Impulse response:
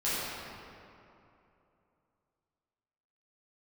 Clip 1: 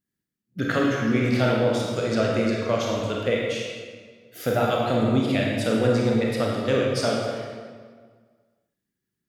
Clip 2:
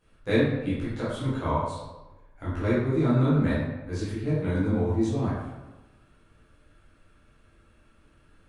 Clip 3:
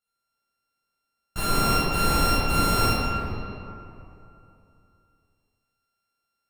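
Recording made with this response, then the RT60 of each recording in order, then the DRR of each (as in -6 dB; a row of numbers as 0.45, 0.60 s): 3; 1.7, 1.1, 2.8 s; -2.5, -11.5, -12.0 dB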